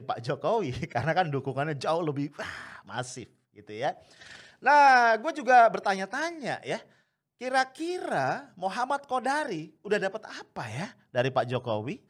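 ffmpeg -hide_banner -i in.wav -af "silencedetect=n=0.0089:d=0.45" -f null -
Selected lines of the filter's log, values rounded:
silence_start: 6.81
silence_end: 7.41 | silence_duration: 0.60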